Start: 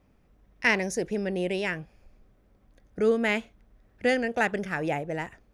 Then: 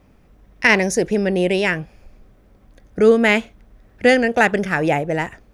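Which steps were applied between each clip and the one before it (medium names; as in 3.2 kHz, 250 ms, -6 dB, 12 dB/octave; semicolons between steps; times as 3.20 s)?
loudness maximiser +11.5 dB; trim -1 dB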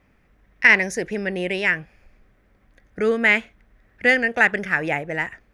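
peaking EQ 1.9 kHz +11 dB 1.1 oct; trim -8.5 dB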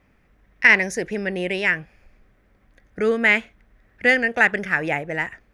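no audible change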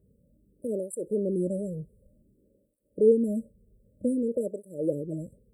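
brick-wall FIR band-stop 620–7500 Hz; cancelling through-zero flanger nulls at 0.54 Hz, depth 3.7 ms; trim +1.5 dB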